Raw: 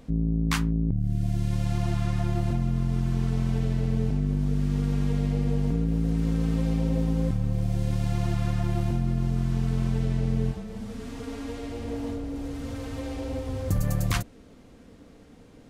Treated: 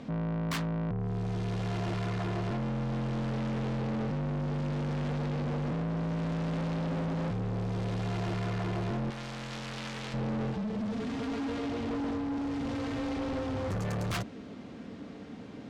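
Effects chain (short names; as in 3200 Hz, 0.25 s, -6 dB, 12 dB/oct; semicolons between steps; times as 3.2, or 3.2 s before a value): BPF 120–4500 Hz; bell 210 Hz +4 dB 0.28 oct; notch 490 Hz, Q 12; soft clip -38 dBFS, distortion -4 dB; 9.1–10.14 tilt shelf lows -10 dB, about 1200 Hz; gain +7.5 dB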